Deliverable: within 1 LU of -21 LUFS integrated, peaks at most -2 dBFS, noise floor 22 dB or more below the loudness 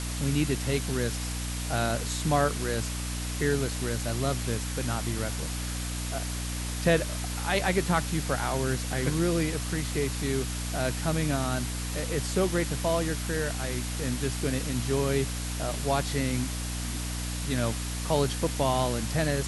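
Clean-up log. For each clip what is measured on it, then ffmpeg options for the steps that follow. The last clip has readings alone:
hum 60 Hz; highest harmonic 300 Hz; hum level -31 dBFS; noise floor -33 dBFS; noise floor target -51 dBFS; loudness -29.0 LUFS; peak level -10.0 dBFS; loudness target -21.0 LUFS
-> -af "bandreject=f=60:t=h:w=4,bandreject=f=120:t=h:w=4,bandreject=f=180:t=h:w=4,bandreject=f=240:t=h:w=4,bandreject=f=300:t=h:w=4"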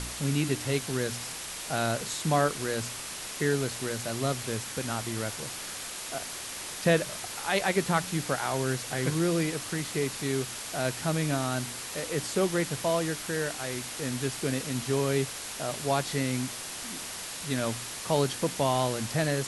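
hum not found; noise floor -39 dBFS; noise floor target -52 dBFS
-> -af "afftdn=nr=13:nf=-39"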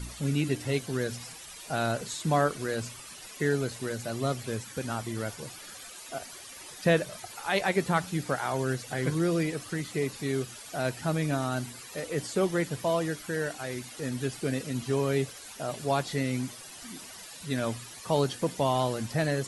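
noise floor -46 dBFS; noise floor target -53 dBFS
-> -af "afftdn=nr=7:nf=-46"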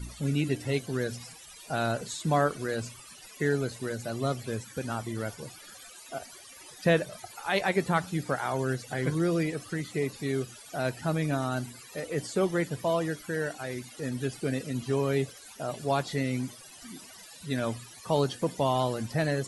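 noise floor -49 dBFS; noise floor target -53 dBFS
-> -af "afftdn=nr=6:nf=-49"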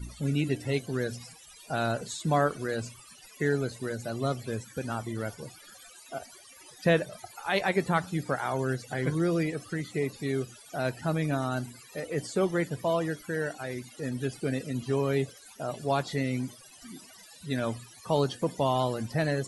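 noise floor -52 dBFS; noise floor target -53 dBFS; loudness -30.5 LUFS; peak level -10.5 dBFS; loudness target -21.0 LUFS
-> -af "volume=2.99,alimiter=limit=0.794:level=0:latency=1"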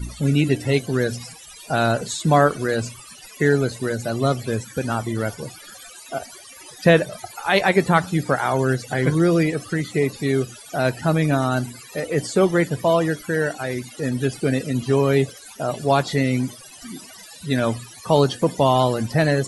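loudness -21.0 LUFS; peak level -2.0 dBFS; noise floor -43 dBFS

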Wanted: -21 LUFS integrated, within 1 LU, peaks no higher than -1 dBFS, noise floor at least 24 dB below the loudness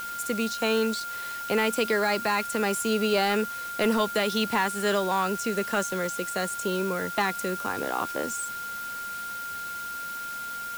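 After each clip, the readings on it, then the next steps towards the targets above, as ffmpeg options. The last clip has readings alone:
steady tone 1.4 kHz; tone level -33 dBFS; noise floor -35 dBFS; noise floor target -52 dBFS; loudness -27.5 LUFS; peak level -14.0 dBFS; loudness target -21.0 LUFS
-> -af "bandreject=f=1400:w=30"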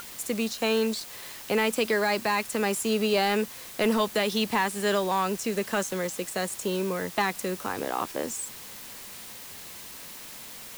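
steady tone not found; noise floor -43 dBFS; noise floor target -52 dBFS
-> -af "afftdn=nr=9:nf=-43"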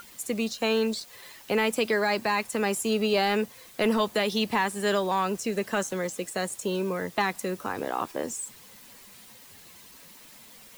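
noise floor -51 dBFS; noise floor target -52 dBFS
-> -af "afftdn=nr=6:nf=-51"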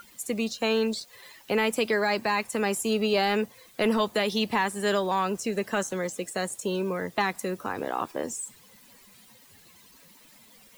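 noise floor -55 dBFS; loudness -27.5 LUFS; peak level -15.0 dBFS; loudness target -21.0 LUFS
-> -af "volume=2.11"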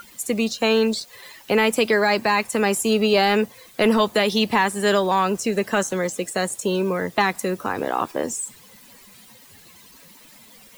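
loudness -21.0 LUFS; peak level -8.5 dBFS; noise floor -49 dBFS

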